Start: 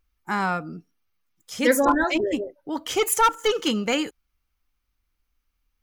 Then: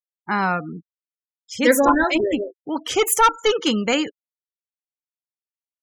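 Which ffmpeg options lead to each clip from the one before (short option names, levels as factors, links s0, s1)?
-af "afftfilt=real='re*gte(hypot(re,im),0.0141)':imag='im*gte(hypot(re,im),0.0141)':win_size=1024:overlap=0.75,volume=1.5"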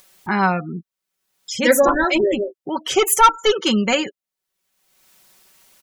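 -af "aecho=1:1:5.3:0.58,acompressor=mode=upward:threshold=0.0631:ratio=2.5,volume=1.12"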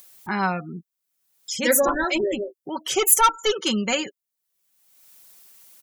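-af "crystalizer=i=1.5:c=0,volume=0.501"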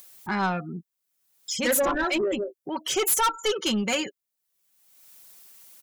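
-af "asoftclip=type=tanh:threshold=0.119"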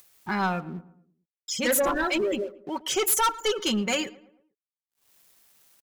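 -filter_complex "[0:a]aeval=exprs='sgn(val(0))*max(abs(val(0))-0.00335,0)':c=same,asplit=2[s0][s1];[s1]adelay=112,lowpass=f=1800:p=1,volume=0.119,asplit=2[s2][s3];[s3]adelay=112,lowpass=f=1800:p=1,volume=0.47,asplit=2[s4][s5];[s5]adelay=112,lowpass=f=1800:p=1,volume=0.47,asplit=2[s6][s7];[s7]adelay=112,lowpass=f=1800:p=1,volume=0.47[s8];[s0][s2][s4][s6][s8]amix=inputs=5:normalize=0"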